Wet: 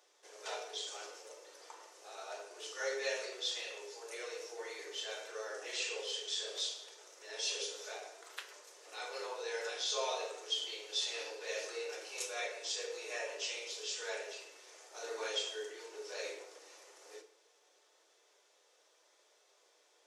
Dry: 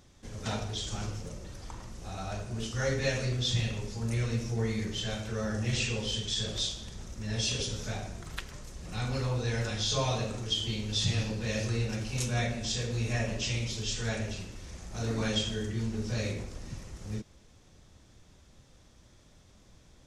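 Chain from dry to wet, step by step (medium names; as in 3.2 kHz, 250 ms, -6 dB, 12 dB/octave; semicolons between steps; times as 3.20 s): steep high-pass 370 Hz 72 dB/octave; FDN reverb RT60 0.41 s, low-frequency decay 1×, high-frequency decay 0.85×, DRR 4 dB; trim -6 dB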